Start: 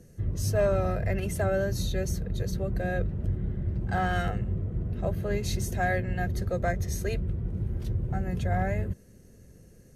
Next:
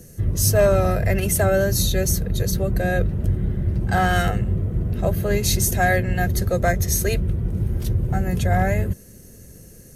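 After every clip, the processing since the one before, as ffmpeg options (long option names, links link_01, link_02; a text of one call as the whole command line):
ffmpeg -i in.wav -af "aemphasis=mode=production:type=50kf,volume=8dB" out.wav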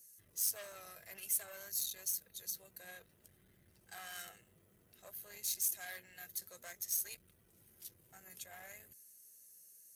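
ffmpeg -i in.wav -af "flanger=delay=0.4:depth=5.9:regen=71:speed=0.56:shape=sinusoidal,aeval=exprs='(tanh(8.91*val(0)+0.35)-tanh(0.35))/8.91':channel_layout=same,aderivative,volume=-6.5dB" out.wav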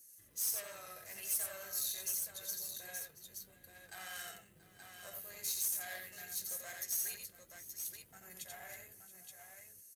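ffmpeg -i in.wav -filter_complex "[0:a]flanger=delay=3.2:depth=9.5:regen=58:speed=0.26:shape=sinusoidal,asoftclip=type=tanh:threshold=-33dB,asplit=2[link_01][link_02];[link_02]aecho=0:1:87|681|875:0.631|0.133|0.473[link_03];[link_01][link_03]amix=inputs=2:normalize=0,volume=5dB" out.wav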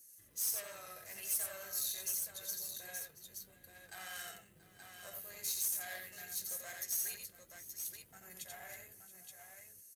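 ffmpeg -i in.wav -af anull out.wav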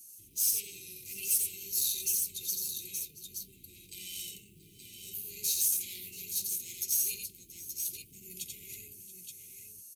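ffmpeg -i in.wav -af "asuperstop=centerf=1000:order=20:qfactor=0.53,volume=7.5dB" out.wav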